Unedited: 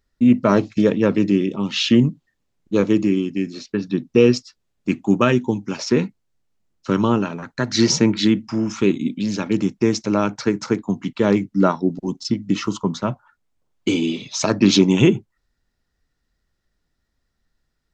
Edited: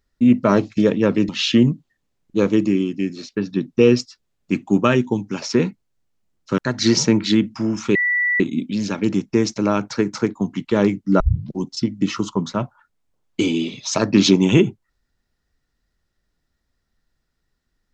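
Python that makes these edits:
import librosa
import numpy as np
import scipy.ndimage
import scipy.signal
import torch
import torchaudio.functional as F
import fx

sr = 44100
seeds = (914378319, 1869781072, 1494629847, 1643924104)

y = fx.edit(x, sr, fx.cut(start_s=1.29, length_s=0.37),
    fx.cut(start_s=6.95, length_s=0.56),
    fx.insert_tone(at_s=8.88, length_s=0.45, hz=1960.0, db=-16.0),
    fx.tape_start(start_s=11.68, length_s=0.35), tone=tone)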